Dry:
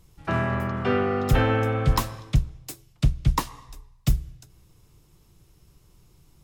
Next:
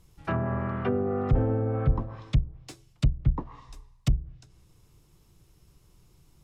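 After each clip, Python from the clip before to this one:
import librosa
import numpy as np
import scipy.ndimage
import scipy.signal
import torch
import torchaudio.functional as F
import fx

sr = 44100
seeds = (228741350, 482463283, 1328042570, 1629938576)

y = fx.env_lowpass_down(x, sr, base_hz=550.0, full_db=-19.0)
y = y * librosa.db_to_amplitude(-2.5)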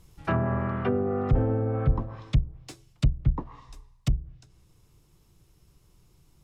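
y = fx.rider(x, sr, range_db=10, speed_s=2.0)
y = y * librosa.db_to_amplitude(1.0)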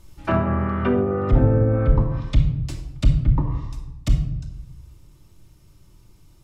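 y = fx.room_shoebox(x, sr, seeds[0], volume_m3=2300.0, walls='furnished', distance_m=2.6)
y = y * librosa.db_to_amplitude(3.5)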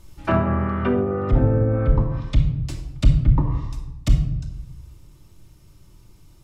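y = fx.rider(x, sr, range_db=4, speed_s=2.0)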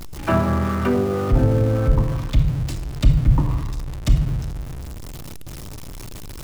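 y = x + 0.5 * 10.0 ** (-29.0 / 20.0) * np.sign(x)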